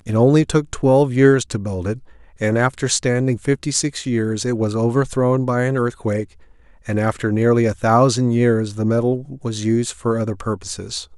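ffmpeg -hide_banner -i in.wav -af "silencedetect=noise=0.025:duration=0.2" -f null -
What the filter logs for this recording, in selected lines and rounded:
silence_start: 1.98
silence_end: 2.41 | silence_duration: 0.43
silence_start: 6.25
silence_end: 6.87 | silence_duration: 0.62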